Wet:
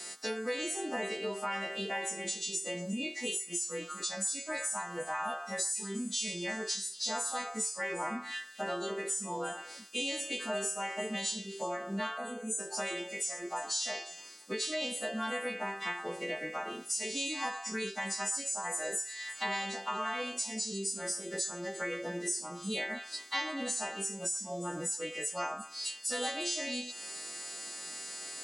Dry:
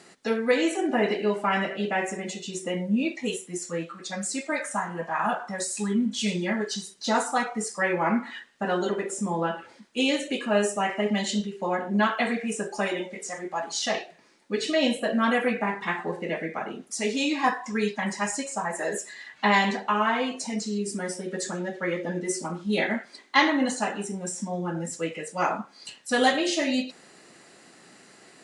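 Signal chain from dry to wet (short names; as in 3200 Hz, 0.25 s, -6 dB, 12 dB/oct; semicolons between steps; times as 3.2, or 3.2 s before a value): frequency quantiser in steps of 2 st; HPF 520 Hz 6 dB/oct; bell 1600 Hz -5.5 dB 2.4 oct; compressor 4:1, threshold -41 dBFS, peak gain reduction 19.5 dB; spectral gain 12.17–12.59, 1600–5900 Hz -21 dB; on a send: delay with a stepping band-pass 0.119 s, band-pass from 1200 Hz, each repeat 1.4 oct, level -9 dB; on the sum: gain +6.5 dB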